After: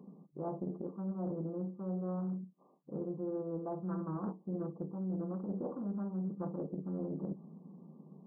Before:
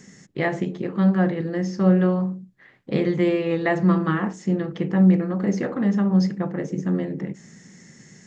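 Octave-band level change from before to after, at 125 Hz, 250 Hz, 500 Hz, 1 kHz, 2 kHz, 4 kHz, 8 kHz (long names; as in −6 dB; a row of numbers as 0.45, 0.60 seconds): −17.5 dB, −17.5 dB, −16.0 dB, −17.0 dB, below −35 dB, below −40 dB, can't be measured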